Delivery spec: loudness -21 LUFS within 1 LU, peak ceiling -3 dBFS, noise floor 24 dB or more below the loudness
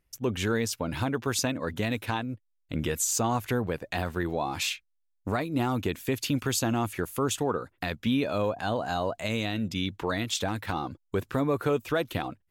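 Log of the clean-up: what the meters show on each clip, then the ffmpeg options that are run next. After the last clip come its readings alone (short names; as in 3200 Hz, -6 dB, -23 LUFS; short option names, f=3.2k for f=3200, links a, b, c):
loudness -29.5 LUFS; peak -14.5 dBFS; loudness target -21.0 LUFS
-> -af "volume=8.5dB"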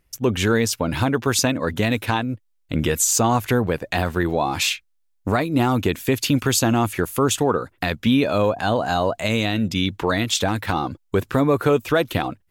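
loudness -21.0 LUFS; peak -6.0 dBFS; noise floor -65 dBFS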